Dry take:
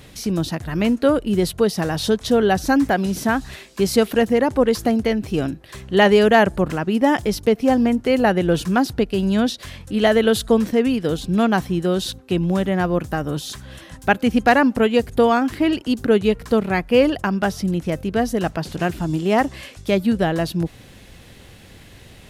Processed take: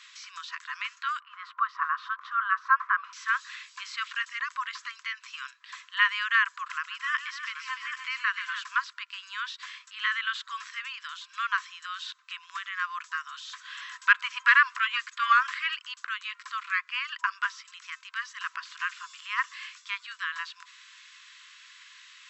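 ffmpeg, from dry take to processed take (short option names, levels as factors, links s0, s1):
-filter_complex "[0:a]asettb=1/sr,asplit=3[s0][s1][s2];[s0]atrim=end=1.204[s3];[s1]atrim=start=1.2:end=3.13,asetpts=PTS-STARTPTS,afade=t=in:d=0.004:c=qsin,afade=t=out:st=1.926:d=0.004:c=qsin,lowpass=f=1200:t=q:w=3.7[s4];[s2]atrim=start=3.126[s5];[s3][s4]acrossfade=d=0.004:c1=hsin:c2=qsin[s6];[s6][s5]acrossfade=d=0.004:c1=qsin:c2=hsin,asettb=1/sr,asplit=3[s7][s8][s9];[s7]atrim=end=6.704[s10];[s8]atrim=start=6.7:end=8.63,asetpts=PTS-STARTPTS,afade=t=in:d=0.004:c=qsin,afade=t=out:st=1.926:d=0.004:c=qsin,aecho=1:1:136|294|785:0.237|0.299|0.316,atrim=end_sample=85113[s11];[s9]atrim=start=8.626[s12];[s10][s11]acrossfade=d=0.004:c1=hsin:c2=qsin[s13];[s13][s12]acrossfade=d=0.004:c1=qsin:c2=hsin,asettb=1/sr,asplit=3[s14][s15][s16];[s14]atrim=end=13.654[s17];[s15]atrim=start=13.65:end=15.75,asetpts=PTS-STARTPTS,afade=t=in:d=0.004:c=qsin,afade=t=out:st=2.096:d=0.004:c=qsin,acontrast=56[s18];[s16]atrim=start=15.746[s19];[s17][s18]acrossfade=d=0.004:c1=hsin:c2=qsin[s20];[s20][s19]acrossfade=d=0.004:c1=qsin:c2=hsin,afftfilt=real='re*between(b*sr/4096,990,7900)':imag='im*between(b*sr/4096,990,7900)':win_size=4096:overlap=0.75,acrossover=split=2900[s21][s22];[s22]acompressor=threshold=0.00501:ratio=4:attack=1:release=60[s23];[s21][s23]amix=inputs=2:normalize=0,volume=0.891"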